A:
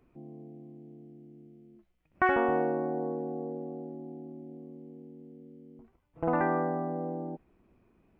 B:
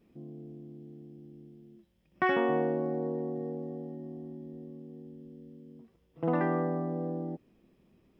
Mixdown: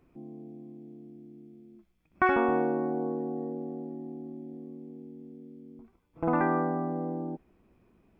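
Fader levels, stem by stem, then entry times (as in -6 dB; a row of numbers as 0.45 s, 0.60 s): +1.0 dB, -8.0 dB; 0.00 s, 0.00 s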